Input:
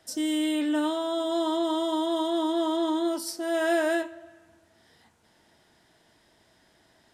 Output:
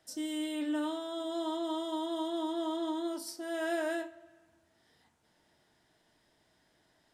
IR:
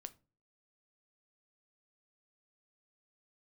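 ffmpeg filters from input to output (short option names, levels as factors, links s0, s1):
-filter_complex "[1:a]atrim=start_sample=2205[s0];[0:a][s0]afir=irnorm=-1:irlink=0,volume=0.75"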